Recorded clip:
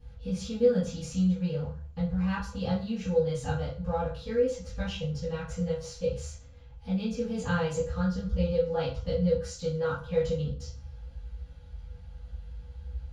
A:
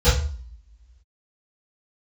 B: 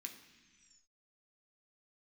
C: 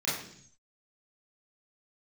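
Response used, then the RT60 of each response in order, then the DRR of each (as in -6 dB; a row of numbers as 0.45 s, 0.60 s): A; 0.45 s, 1.4 s, 0.60 s; -19.0 dB, 2.0 dB, -10.0 dB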